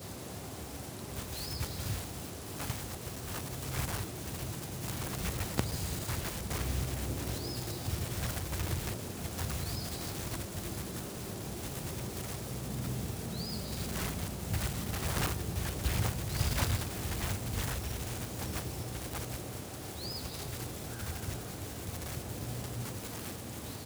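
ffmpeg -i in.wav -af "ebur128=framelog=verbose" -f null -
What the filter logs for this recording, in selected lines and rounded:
Integrated loudness:
  I:         -37.1 LUFS
  Threshold: -47.0 LUFS
Loudness range:
  LRA:         5.7 LU
  Threshold: -56.8 LUFS
  LRA low:   -39.5 LUFS
  LRA high:  -33.9 LUFS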